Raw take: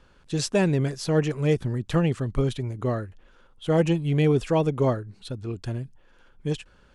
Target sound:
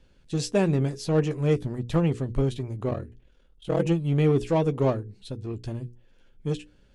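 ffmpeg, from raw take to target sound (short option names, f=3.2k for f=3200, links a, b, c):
-filter_complex "[0:a]asettb=1/sr,asplit=3[a][b][c];[a]atrim=end=2.894[d];[b]atrim=start=2.89:end=3.85,asetpts=PTS-STARTPTS,afade=t=in:d=0.004:c=qsin,afade=t=out:st=0.956:d=0.004:c=qsin,aeval=exprs='val(0)*sin(2*PI*20*n/s)':c=same[e];[c]atrim=start=3.846[f];[d][e]acrossfade=d=0.004:c1=hsin:c2=qsin[g];[g][f]acrossfade=d=0.004:c1=qsin:c2=hsin,acrossover=split=1500[h][i];[h]adynamicsmooth=sensitivity=2:basefreq=630[j];[i]flanger=delay=9.5:depth=5:regen=-22:speed=1:shape=sinusoidal[k];[j][k]amix=inputs=2:normalize=0,bandreject=f=60:t=h:w=6,bandreject=f=120:t=h:w=6,bandreject=f=180:t=h:w=6,bandreject=f=240:t=h:w=6,bandreject=f=300:t=h:w=6,bandreject=f=360:t=h:w=6,bandreject=f=420:t=h:w=6,bandreject=f=480:t=h:w=6"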